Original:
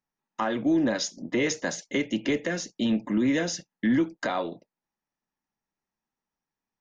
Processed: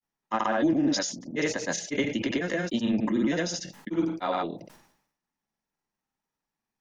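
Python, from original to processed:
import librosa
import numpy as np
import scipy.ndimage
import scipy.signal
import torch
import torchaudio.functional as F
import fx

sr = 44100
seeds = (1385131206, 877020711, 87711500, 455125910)

y = fx.rider(x, sr, range_db=4, speed_s=2.0)
y = fx.granulator(y, sr, seeds[0], grain_ms=100.0, per_s=20.0, spray_ms=103.0, spread_st=0)
y = fx.sustainer(y, sr, db_per_s=79.0)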